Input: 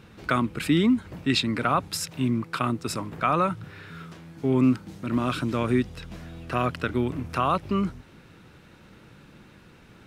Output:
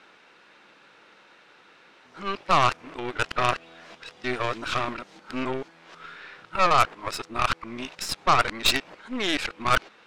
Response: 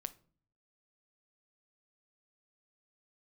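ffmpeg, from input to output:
-af "areverse,highpass=600,lowpass=5.5k,aeval=exprs='0.299*(cos(1*acos(clip(val(0)/0.299,-1,1)))-cos(1*PI/2))+0.0075*(cos(7*acos(clip(val(0)/0.299,-1,1)))-cos(7*PI/2))+0.0376*(cos(8*acos(clip(val(0)/0.299,-1,1)))-cos(8*PI/2))':c=same,volume=4.5dB"

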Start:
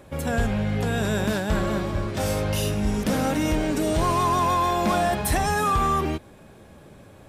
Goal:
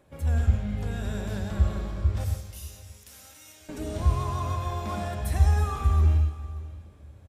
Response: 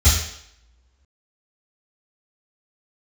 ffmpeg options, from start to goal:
-filter_complex "[0:a]asettb=1/sr,asplit=3[a][b][c];[a]atrim=end=2.244[d];[b]atrim=start=2.24:end=3.69,asetpts=PTS-STARTPTS,afade=t=in:d=0.004:c=qsin,afade=t=out:st=1.446:d=0.004:c=qsin,aderivative[e];[c]atrim=start=3.686[f];[d][e]acrossfade=d=0.004:c1=hsin:c2=qsin[g];[g][f]acrossfade=d=0.004:c1=qsin:c2=hsin,aecho=1:1:170|340|510|680|850|1020:0.15|0.0883|0.0521|0.0307|0.0181|0.0107,asplit=2[h][i];[1:a]atrim=start_sample=2205,atrim=end_sample=3528,adelay=80[j];[i][j]afir=irnorm=-1:irlink=0,volume=-23dB[k];[h][k]amix=inputs=2:normalize=0,flanger=delay=6.5:depth=8.7:regen=85:speed=0.61:shape=sinusoidal,asplit=2[l][m];[m]aecho=0:1:584:0.119[n];[l][n]amix=inputs=2:normalize=0,volume=-8.5dB"

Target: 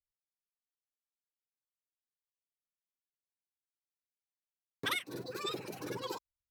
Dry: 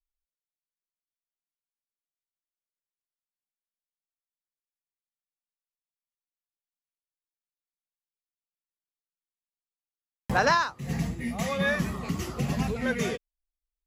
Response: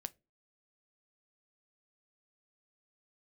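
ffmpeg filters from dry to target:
-filter_complex "[0:a]acrossover=split=540[a][b];[a]aeval=exprs='val(0)*(1-0.7/2+0.7/2*cos(2*PI*9.3*n/s))':c=same[c];[b]aeval=exprs='val(0)*(1-0.7/2-0.7/2*cos(2*PI*9.3*n/s))':c=same[d];[c][d]amix=inputs=2:normalize=0,asetrate=93933,aresample=44100,volume=-8.5dB"

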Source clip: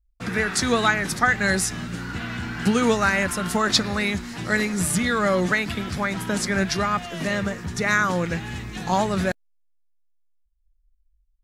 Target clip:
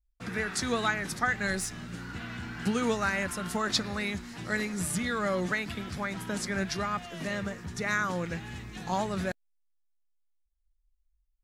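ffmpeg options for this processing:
-filter_complex "[0:a]asettb=1/sr,asplit=3[a][b][c];[a]atrim=end=1.474[d];[b]atrim=start=1.47:end=1.88,asetpts=PTS-STARTPTS,afade=t=in:d=0.004:c=qsin,afade=t=out:st=0.406:d=0.004:c=qsin,aeval=exprs='if(lt(val(0),0),0.708*val(0),val(0))':c=same[e];[c]atrim=start=1.876[f];[d][e]acrossfade=d=0.004:c1=hsin:c2=qsin[g];[g][f]acrossfade=d=0.004:c1=qsin:c2=hsin,volume=-8.5dB"

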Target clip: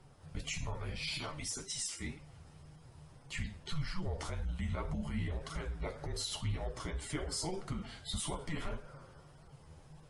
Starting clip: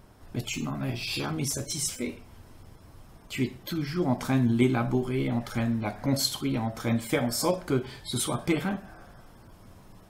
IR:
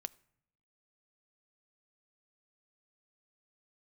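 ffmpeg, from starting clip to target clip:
-filter_complex "[0:a]asettb=1/sr,asplit=3[a][b][c];[a]atrim=end=1.184[d];[b]atrim=start=1.18:end=2.05,asetpts=PTS-STARTPTS,afade=t=in:d=0.004:c=qsin,afade=t=out:st=0.866:d=0.004:c=qsin,highpass=f=590:p=1[e];[c]atrim=start=2.046[f];[d][e]acrossfade=d=0.004:c1=hsin:c2=qsin[g];[g][f]acrossfade=d=0.004:c1=qsin:c2=hsin,alimiter=limit=-23dB:level=0:latency=1:release=53,afreqshift=-170,flanger=delay=5.1:depth=7.3:regen=38:speed=1.8:shape=triangular,volume=-1dB" -ar 24000 -c:a libmp3lame -b:a 48k

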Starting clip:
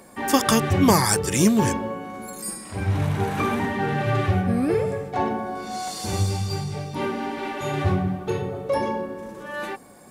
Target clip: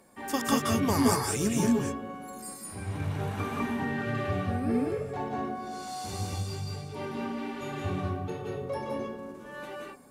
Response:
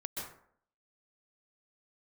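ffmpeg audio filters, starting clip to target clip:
-filter_complex "[1:a]atrim=start_sample=2205,atrim=end_sample=6615,asetrate=32193,aresample=44100[a];[0:a][a]afir=irnorm=-1:irlink=0,volume=-9dB"

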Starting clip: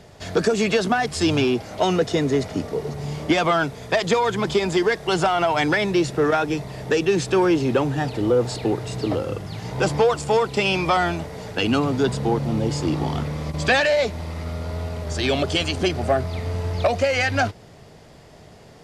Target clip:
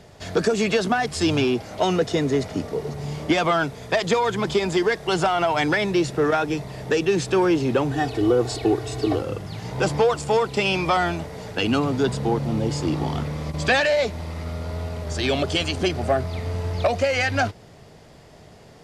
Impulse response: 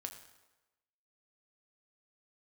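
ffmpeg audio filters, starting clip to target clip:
-filter_complex "[0:a]asettb=1/sr,asplit=3[a][b][c];[a]atrim=end=7.914[d];[b]atrim=start=7.91:end=9.22,asetpts=PTS-STARTPTS,afade=t=in:d=0.004:c=qsin,afade=t=out:st=1.306:d=0.004:c=qsin,aecho=1:1:2.7:0.76,atrim=end_sample=57771[e];[c]atrim=start=9.216[f];[d][e]acrossfade=d=0.004:c1=hsin:c2=qsin[g];[g][f]acrossfade=d=0.004:c1=qsin:c2=hsin,volume=-1dB"

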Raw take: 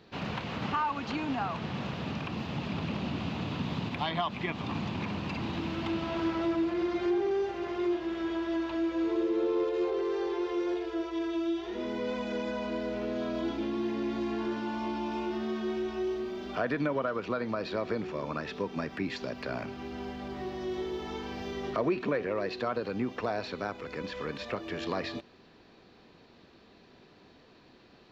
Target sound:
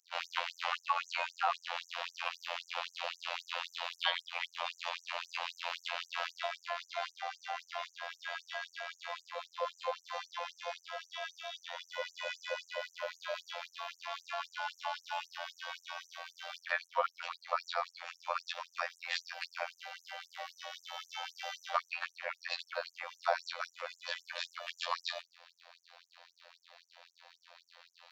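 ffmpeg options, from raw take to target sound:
-af "afftfilt=real='hypot(re,im)*cos(PI*b)':imag='0':win_size=2048:overlap=0.75,afftfilt=real='re*gte(b*sr/1024,480*pow(6000/480,0.5+0.5*sin(2*PI*3.8*pts/sr)))':imag='im*gte(b*sr/1024,480*pow(6000/480,0.5+0.5*sin(2*PI*3.8*pts/sr)))':win_size=1024:overlap=0.75,volume=7.5dB"

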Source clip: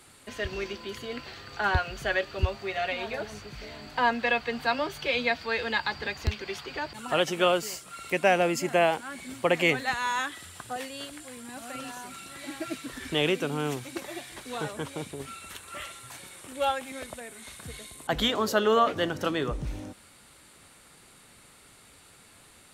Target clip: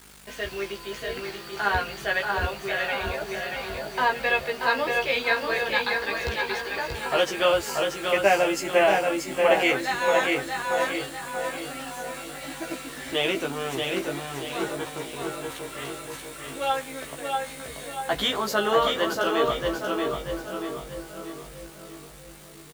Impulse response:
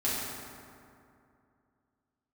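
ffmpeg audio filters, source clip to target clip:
-filter_complex "[0:a]bass=f=250:g=-9,treble=f=4k:g=-1,aeval=exprs='val(0)+0.00224*(sin(2*PI*50*n/s)+sin(2*PI*2*50*n/s)/2+sin(2*PI*3*50*n/s)/3+sin(2*PI*4*50*n/s)/4+sin(2*PI*5*50*n/s)/5)':c=same,asplit=2[a][b];[b]aecho=0:1:633|1266|1899|2532|3165:0.596|0.238|0.0953|0.0381|0.0152[c];[a][c]amix=inputs=2:normalize=0,acrusher=bits=7:mix=0:aa=0.000001,asplit=2[d][e];[e]adelay=15,volume=-2dB[f];[d][f]amix=inputs=2:normalize=0,asplit=2[g][h];[h]adelay=654,lowpass=f=1.1k:p=1,volume=-5dB,asplit=2[i][j];[j]adelay=654,lowpass=f=1.1k:p=1,volume=0.51,asplit=2[k][l];[l]adelay=654,lowpass=f=1.1k:p=1,volume=0.51,asplit=2[m][n];[n]adelay=654,lowpass=f=1.1k:p=1,volume=0.51,asplit=2[o][p];[p]adelay=654,lowpass=f=1.1k:p=1,volume=0.51,asplit=2[q][r];[r]adelay=654,lowpass=f=1.1k:p=1,volume=0.51[s];[i][k][m][o][q][s]amix=inputs=6:normalize=0[t];[g][t]amix=inputs=2:normalize=0"

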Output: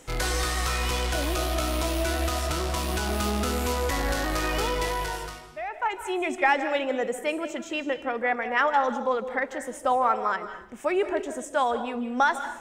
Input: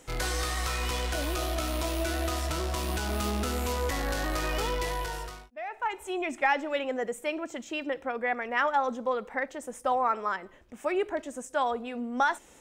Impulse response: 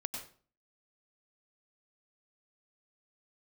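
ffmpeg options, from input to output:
-filter_complex "[0:a]asplit=2[a][b];[1:a]atrim=start_sample=2205,asetrate=26901,aresample=44100[c];[b][c]afir=irnorm=-1:irlink=0,volume=-7dB[d];[a][d]amix=inputs=2:normalize=0"

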